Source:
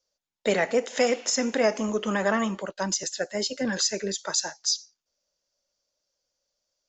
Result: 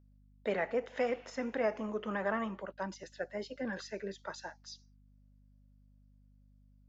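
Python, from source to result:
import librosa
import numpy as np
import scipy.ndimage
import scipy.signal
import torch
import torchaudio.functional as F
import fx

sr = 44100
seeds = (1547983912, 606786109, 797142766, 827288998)

y = scipy.signal.sosfilt(scipy.signal.butter(2, 2100.0, 'lowpass', fs=sr, output='sos'), x)
y = fx.add_hum(y, sr, base_hz=50, snr_db=22)
y = fx.low_shelf(y, sr, hz=440.0, db=-4.0)
y = y * 10.0 ** (-7.5 / 20.0)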